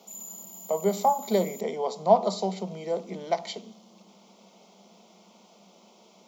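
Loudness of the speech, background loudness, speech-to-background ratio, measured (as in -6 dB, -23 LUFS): -27.5 LUFS, -41.5 LUFS, 14.0 dB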